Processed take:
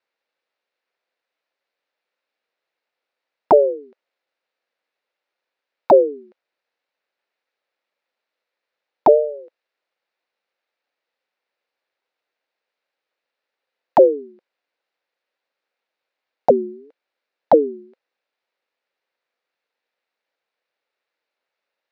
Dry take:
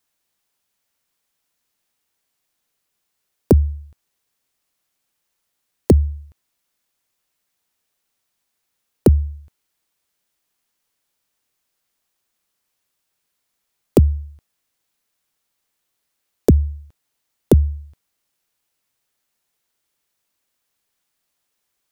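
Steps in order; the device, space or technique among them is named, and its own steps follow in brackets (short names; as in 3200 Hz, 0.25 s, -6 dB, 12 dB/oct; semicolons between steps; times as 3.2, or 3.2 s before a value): voice changer toy (ring modulator with a swept carrier 410 Hz, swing 30%, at 0.87 Hz; speaker cabinet 430–3800 Hz, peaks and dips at 520 Hz +7 dB, 1100 Hz -4 dB, 3200 Hz -7 dB); gain +3.5 dB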